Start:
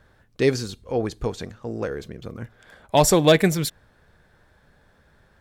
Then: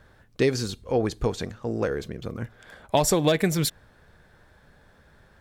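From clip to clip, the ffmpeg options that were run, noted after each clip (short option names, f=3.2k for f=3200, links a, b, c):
-af "acompressor=threshold=-19dB:ratio=10,volume=2dB"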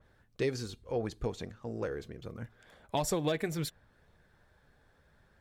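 -af "flanger=delay=0.3:depth=2.4:regen=-71:speed=0.73:shape=sinusoidal,adynamicequalizer=threshold=0.00398:dfrequency=3700:dqfactor=0.7:tfrequency=3700:tqfactor=0.7:attack=5:release=100:ratio=0.375:range=2.5:mode=cutabove:tftype=highshelf,volume=-5.5dB"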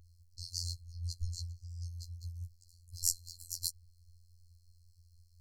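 -af "afftfilt=real='hypot(re,im)*cos(PI*b)':imag='0':win_size=2048:overlap=0.75,afftfilt=real='re*(1-between(b*sr/4096,100,4100))':imag='im*(1-between(b*sr/4096,100,4100))':win_size=4096:overlap=0.75,volume=10dB"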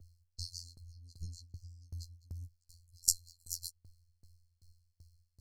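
-filter_complex "[0:a]acrossover=split=120|580|3800[a][b][c][d];[a]asoftclip=type=tanh:threshold=-39dB[e];[e][b][c][d]amix=inputs=4:normalize=0,aeval=exprs='val(0)*pow(10,-27*if(lt(mod(2.6*n/s,1),2*abs(2.6)/1000),1-mod(2.6*n/s,1)/(2*abs(2.6)/1000),(mod(2.6*n/s,1)-2*abs(2.6)/1000)/(1-2*abs(2.6)/1000))/20)':c=same,volume=6dB"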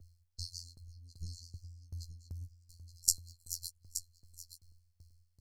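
-af "aecho=1:1:873:0.282"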